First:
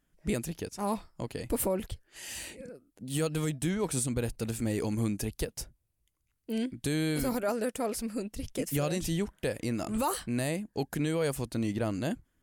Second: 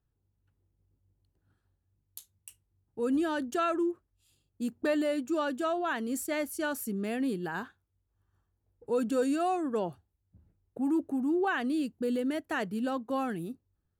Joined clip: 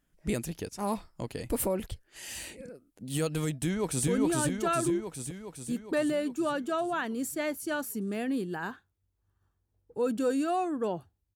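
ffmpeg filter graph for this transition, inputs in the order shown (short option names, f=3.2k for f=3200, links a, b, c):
-filter_complex "[0:a]apad=whole_dur=11.35,atrim=end=11.35,atrim=end=4.082[a];[1:a]atrim=start=2.998:end=10.27[b];[a][b]acrossfade=d=0.004:c1=hsin:c2=hsin,asplit=2[c][d];[d]afade=t=in:st=3.59:d=0.01,afade=t=out:st=4.08:d=0.01,aecho=0:1:410|820|1230|1640|2050|2460|2870|3280|3690|4100|4510:0.891251|0.579313|0.376554|0.24476|0.159094|0.103411|0.0672172|0.0436912|0.0283992|0.0184595|0.0119987[e];[c][e]amix=inputs=2:normalize=0"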